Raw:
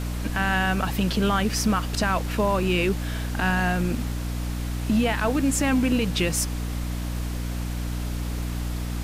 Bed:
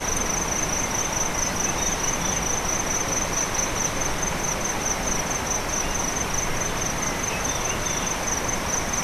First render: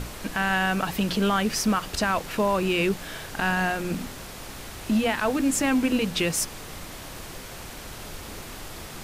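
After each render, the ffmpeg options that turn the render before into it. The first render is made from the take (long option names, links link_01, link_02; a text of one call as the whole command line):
ffmpeg -i in.wav -af "bandreject=frequency=60:width_type=h:width=6,bandreject=frequency=120:width_type=h:width=6,bandreject=frequency=180:width_type=h:width=6,bandreject=frequency=240:width_type=h:width=6,bandreject=frequency=300:width_type=h:width=6" out.wav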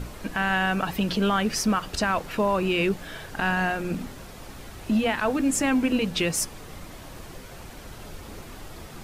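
ffmpeg -i in.wav -af "afftdn=noise_reduction=7:noise_floor=-40" out.wav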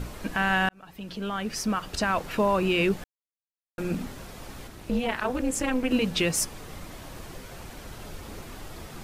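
ffmpeg -i in.wav -filter_complex "[0:a]asettb=1/sr,asplit=3[link_01][link_02][link_03];[link_01]atrim=end=4.674[link_04];[link_02]atrim=start=4.67:end=5.91,asetpts=PTS-STARTPTS,afade=type=in:duration=0.004:curve=qsin,afade=type=out:start_time=1.236:duration=0.004:curve=qsin,tremolo=f=250:d=0.919[link_05];[link_03]atrim=start=5.906[link_06];[link_04][link_05]acrossfade=duration=0.004:curve1=hsin:curve2=qsin[link_07];[link_07][link_06]acrossfade=duration=0.004:curve1=qsin:curve2=hsin,asplit=4[link_08][link_09][link_10][link_11];[link_08]atrim=end=0.69,asetpts=PTS-STARTPTS,afade=type=out:start_time=0.686:duration=0.004:curve=hsin[link_12];[link_09]atrim=start=0.69:end=3.04,asetpts=PTS-STARTPTS,afade=type=in:duration=1.62,afade=type=out:start_time=2.346:duration=0.004:curve=hsin[link_13];[link_10]atrim=start=3.04:end=3.78,asetpts=PTS-STARTPTS,volume=0[link_14];[link_11]atrim=start=3.78,asetpts=PTS-STARTPTS,afade=type=in:duration=0.004:curve=hsin[link_15];[link_12][link_13][link_14][link_15]concat=n=4:v=0:a=1" out.wav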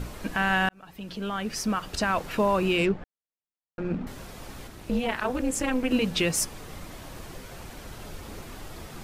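ffmpeg -i in.wav -filter_complex "[0:a]asettb=1/sr,asplit=3[link_01][link_02][link_03];[link_01]atrim=end=2.784[link_04];[link_02]atrim=start=2.78:end=4.07,asetpts=PTS-STARTPTS,afade=type=in:duration=0.004:curve=qsin,afade=type=out:start_time=1.286:duration=0.004:curve=qsin,adynamicsmooth=sensitivity=2:basefreq=1700[link_05];[link_03]atrim=start=4.066[link_06];[link_04][link_05]acrossfade=duration=0.004:curve1=hsin:curve2=qsin[link_07];[link_07][link_06]acrossfade=duration=0.004:curve1=qsin:curve2=hsin" out.wav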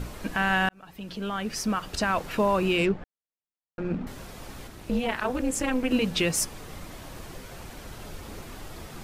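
ffmpeg -i in.wav -af anull out.wav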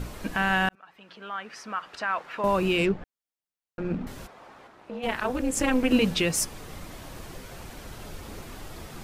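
ffmpeg -i in.wav -filter_complex "[0:a]asettb=1/sr,asplit=3[link_01][link_02][link_03];[link_01]atrim=end=0.754[link_04];[link_02]atrim=start=0.75:end=2.44,asetpts=PTS-STARTPTS,afade=type=in:duration=0.004:curve=qsin,afade=type=out:start_time=1.686:duration=0.004:curve=qsin,bandpass=frequency=1400:width_type=q:width=1[link_05];[link_03]atrim=start=2.436[link_06];[link_04][link_05]acrossfade=duration=0.004:curve1=hsin:curve2=qsin[link_07];[link_07][link_06]acrossfade=duration=0.004:curve1=qsin:curve2=hsin,asplit=3[link_08][link_09][link_10];[link_08]afade=type=out:start_time=4.26:duration=0.02[link_11];[link_09]bandpass=frequency=950:width_type=q:width=0.98,afade=type=in:start_time=4.26:duration=0.02,afade=type=out:start_time=5.02:duration=0.02[link_12];[link_10]afade=type=in:start_time=5.02:duration=0.02[link_13];[link_11][link_12][link_13]amix=inputs=3:normalize=0,asplit=3[link_14][link_15][link_16];[link_14]atrim=end=5.572[link_17];[link_15]atrim=start=5.568:end=6.142,asetpts=PTS-STARTPTS,volume=3dB[link_18];[link_16]atrim=start=6.138[link_19];[link_17][link_18]acrossfade=duration=0.004:curve1=hsin:curve2=hsin[link_20];[link_20][link_19]acrossfade=duration=0.004:curve1=hsin:curve2=hsin" out.wav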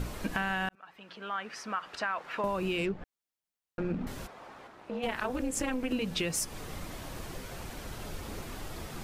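ffmpeg -i in.wav -af "acompressor=threshold=-28dB:ratio=10" out.wav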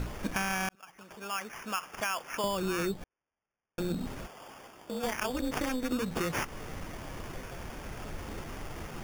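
ffmpeg -i in.wav -af "acrusher=samples=11:mix=1:aa=0.000001" out.wav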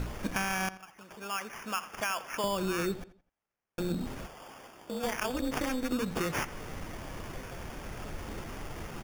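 ffmpeg -i in.wav -filter_complex "[0:a]asplit=2[link_01][link_02];[link_02]adelay=85,lowpass=frequency=4600:poles=1,volume=-16dB,asplit=2[link_03][link_04];[link_04]adelay=85,lowpass=frequency=4600:poles=1,volume=0.37,asplit=2[link_05][link_06];[link_06]adelay=85,lowpass=frequency=4600:poles=1,volume=0.37[link_07];[link_01][link_03][link_05][link_07]amix=inputs=4:normalize=0" out.wav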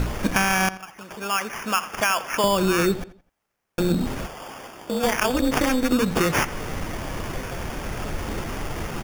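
ffmpeg -i in.wav -af "volume=11dB" out.wav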